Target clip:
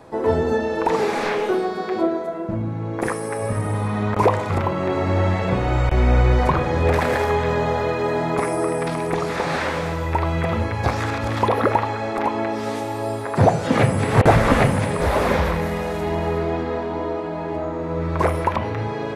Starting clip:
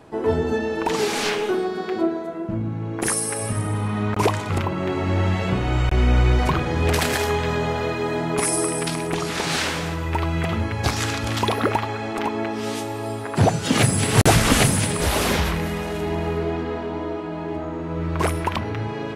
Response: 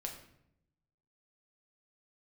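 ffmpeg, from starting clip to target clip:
-filter_complex "[0:a]asplit=2[link_01][link_02];[link_02]highpass=490,equalizer=frequency=510:width_type=q:width=4:gain=10,equalizer=frequency=720:width_type=q:width=4:gain=-4,equalizer=frequency=1600:width_type=q:width=4:gain=-9,equalizer=frequency=3100:width_type=q:width=4:gain=7,lowpass=frequency=4300:width=0.5412,lowpass=frequency=4300:width=1.3066[link_03];[1:a]atrim=start_sample=2205,lowpass=2600[link_04];[link_03][link_04]afir=irnorm=-1:irlink=0,volume=-2dB[link_05];[link_01][link_05]amix=inputs=2:normalize=0,acrossover=split=2600[link_06][link_07];[link_07]acompressor=threshold=-41dB:ratio=4:attack=1:release=60[link_08];[link_06][link_08]amix=inputs=2:normalize=0,volume=1dB"

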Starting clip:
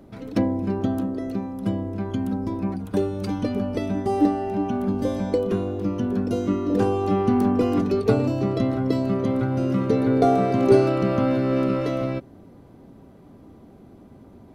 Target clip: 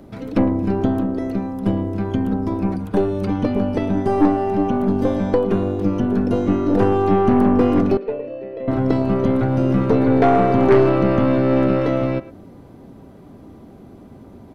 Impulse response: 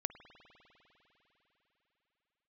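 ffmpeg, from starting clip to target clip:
-filter_complex "[0:a]acrossover=split=3200[link_01][link_02];[link_02]acompressor=threshold=-59dB:ratio=6[link_03];[link_01][link_03]amix=inputs=2:normalize=0,asettb=1/sr,asplit=3[link_04][link_05][link_06];[link_04]atrim=end=7.974[link_07];[link_05]atrim=start=7.97:end=8.68,asetpts=PTS-STARTPTS,afade=type=in:duration=0.004:curve=qsin,afade=type=out:start_time=0.706:duration=0.004:curve=qsin,asplit=3[link_08][link_09][link_10];[link_08]bandpass=frequency=530:width_type=q:width=8,volume=0dB[link_11];[link_09]bandpass=frequency=1840:width_type=q:width=8,volume=-6dB[link_12];[link_10]bandpass=frequency=2480:width_type=q:width=8,volume=-9dB[link_13];[link_11][link_12][link_13]amix=inputs=3:normalize=0[link_14];[link_06]atrim=start=8.676[link_15];[link_07][link_14]acrossfade=duration=0.004:curve1=hsin:curve2=qsin[link_16];[link_16][link_15]acrossfade=duration=0.004:curve1=qsin:curve2=hsin,asplit=2[link_17][link_18];[link_18]adelay=110,highpass=300,lowpass=3400,asoftclip=type=hard:threshold=-12.5dB,volume=-15dB[link_19];[link_17][link_19]amix=inputs=2:normalize=0,aeval=exprs='0.668*(cos(1*acos(clip(val(0)/0.668,-1,1)))-cos(1*PI/2))+0.119*(cos(5*acos(clip(val(0)/0.668,-1,1)))-cos(5*PI/2))+0.0668*(cos(8*acos(clip(val(0)/0.668,-1,1)))-cos(8*PI/2))':channel_layout=same"

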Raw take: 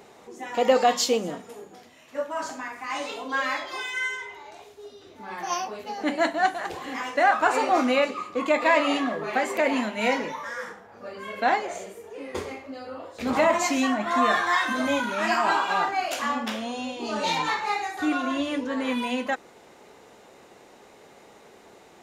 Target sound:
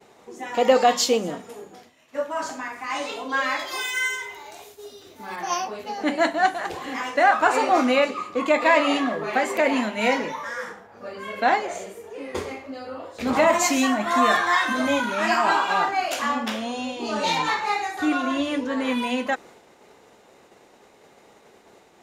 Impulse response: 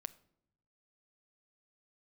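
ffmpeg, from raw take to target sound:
-filter_complex "[0:a]asettb=1/sr,asplit=3[link_01][link_02][link_03];[link_01]atrim=end=3.594[link_04];[link_02]atrim=start=3.59:end=5.36,asetpts=PTS-STARTPTS,afade=type=in:duration=0.004:curve=qsin,afade=type=out:start_time=1.766:duration=0.004:curve=qsin,aemphasis=mode=production:type=50fm[link_05];[link_03]atrim=start=5.356[link_06];[link_04][link_05]acrossfade=duration=0.004:curve1=hsin:curve2=qsin[link_07];[link_07][link_06]acrossfade=duration=0.004:curve1=qsin:curve2=hsin,agate=range=-33dB:threshold=-46dB:ratio=3:detection=peak,asettb=1/sr,asplit=3[link_08][link_09][link_10];[link_08]atrim=end=13.474[link_11];[link_09]atrim=start=13.47:end=14.37,asetpts=PTS-STARTPTS,afade=type=in:duration=0.004:curve=qsin,afade=type=out:start_time=0.896:duration=0.004:curve=qsin,highshelf=frequency=7900:gain=10[link_12];[link_10]atrim=start=14.366[link_13];[link_11][link_12]acrossfade=duration=0.004:curve1=hsin:curve2=qsin[link_14];[link_14][link_13]acrossfade=duration=0.004:curve1=qsin:curve2=hsin,volume=2.5dB"

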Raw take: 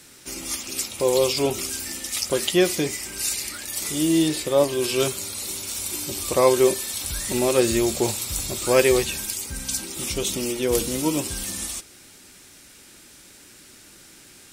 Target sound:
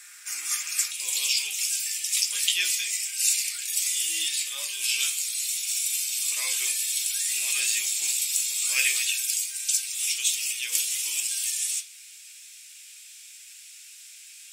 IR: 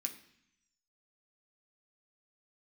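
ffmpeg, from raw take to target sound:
-filter_complex "[0:a]asetnsamples=nb_out_samples=441:pad=0,asendcmd='0.91 highpass f 2900',highpass=frequency=1500:width_type=q:width=2[link_01];[1:a]atrim=start_sample=2205,atrim=end_sample=3528[link_02];[link_01][link_02]afir=irnorm=-1:irlink=0"

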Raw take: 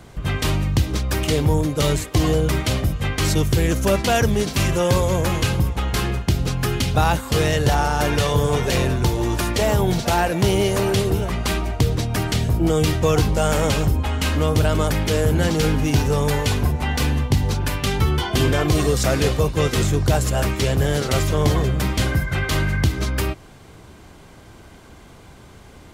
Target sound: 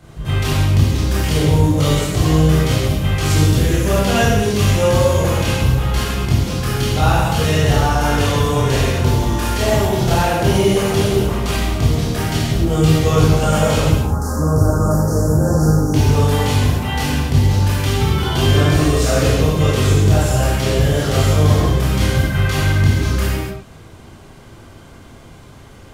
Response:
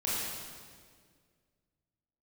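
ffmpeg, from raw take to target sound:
-filter_complex "[0:a]asettb=1/sr,asplit=3[link_01][link_02][link_03];[link_01]atrim=end=13.844[link_04];[link_02]atrim=start=13.84:end=15.94,asetpts=PTS-STARTPTS,afade=type=in:duration=0.004:curve=qsin,afade=type=out:start_time=2.096:duration=0.004:curve=qsin,asuperstop=centerf=2800:order=8:qfactor=0.7[link_05];[link_03]atrim=start=15.936[link_06];[link_04][link_05]acrossfade=duration=0.004:curve1=hsin:curve2=qsin[link_07];[link_07][link_06]acrossfade=duration=0.004:curve1=qsin:curve2=hsin[link_08];[1:a]atrim=start_sample=2205,afade=type=out:start_time=0.42:duration=0.01,atrim=end_sample=18963,asetrate=52920,aresample=44100[link_09];[link_08][link_09]afir=irnorm=-1:irlink=0,volume=-2.5dB"

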